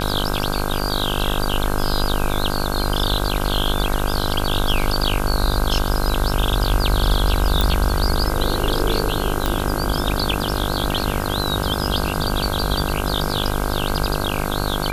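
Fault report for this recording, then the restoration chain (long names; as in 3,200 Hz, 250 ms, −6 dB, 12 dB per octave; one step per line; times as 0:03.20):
mains buzz 50 Hz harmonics 32 −24 dBFS
0:07.61: click
0:09.46: click −5 dBFS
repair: click removal
hum removal 50 Hz, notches 32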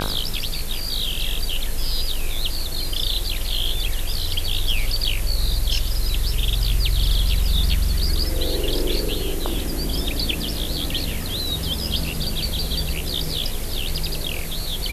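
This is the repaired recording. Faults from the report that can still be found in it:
none of them is left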